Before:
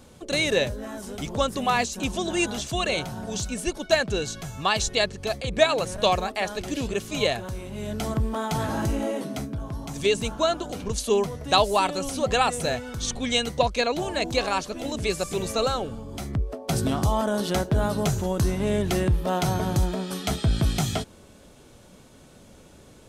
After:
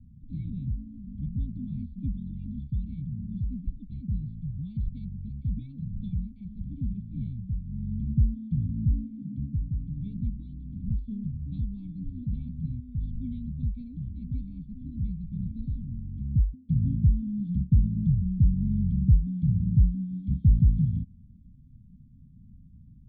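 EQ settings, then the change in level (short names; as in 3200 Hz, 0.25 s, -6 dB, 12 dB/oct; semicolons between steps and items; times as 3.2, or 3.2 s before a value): vocal tract filter i; inverse Chebyshev band-stop 330–3100 Hz, stop band 40 dB; low shelf 180 Hz +9.5 dB; +8.5 dB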